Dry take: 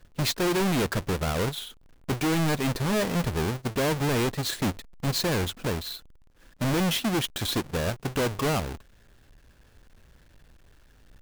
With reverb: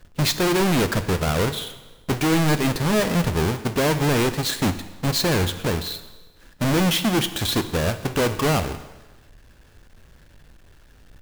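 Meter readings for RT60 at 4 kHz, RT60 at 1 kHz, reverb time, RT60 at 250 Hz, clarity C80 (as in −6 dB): 1.1 s, 1.2 s, 1.2 s, 1.1 s, 14.5 dB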